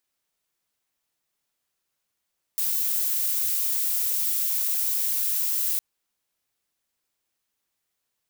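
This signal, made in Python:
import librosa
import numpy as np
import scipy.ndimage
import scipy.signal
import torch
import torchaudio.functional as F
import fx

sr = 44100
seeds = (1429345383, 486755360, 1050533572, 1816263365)

y = fx.noise_colour(sr, seeds[0], length_s=3.21, colour='violet', level_db=-25.0)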